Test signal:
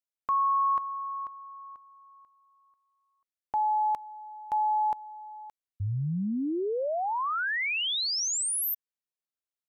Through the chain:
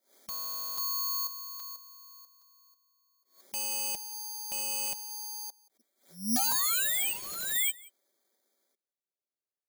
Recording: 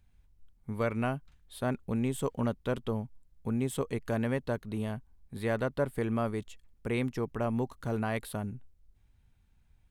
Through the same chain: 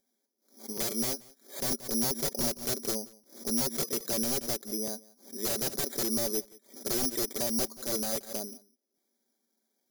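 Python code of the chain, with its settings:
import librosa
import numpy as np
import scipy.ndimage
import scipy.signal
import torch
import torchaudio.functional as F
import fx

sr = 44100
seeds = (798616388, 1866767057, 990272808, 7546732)

p1 = fx.block_float(x, sr, bits=7)
p2 = fx.brickwall_bandpass(p1, sr, low_hz=220.0, high_hz=2400.0)
p3 = fx.air_absorb(p2, sr, metres=130.0)
p4 = (np.mod(10.0 ** (27.5 / 20.0) * p3 + 1.0, 2.0) - 1.0) / 10.0 ** (27.5 / 20.0)
p5 = p4 + fx.echo_single(p4, sr, ms=178, db=-23.0, dry=0)
p6 = (np.kron(scipy.signal.resample_poly(p5, 1, 8), np.eye(8)[0]) * 8)[:len(p5)]
p7 = fx.low_shelf_res(p6, sr, hz=760.0, db=7.0, q=1.5)
p8 = p7 + 0.48 * np.pad(p7, (int(5.2 * sr / 1000.0), 0))[:len(p7)]
p9 = fx.buffer_crackle(p8, sr, first_s=0.77, period_s=0.82, block=256, kind='repeat')
p10 = fx.pre_swell(p9, sr, db_per_s=150.0)
y = p10 * 10.0 ** (-6.5 / 20.0)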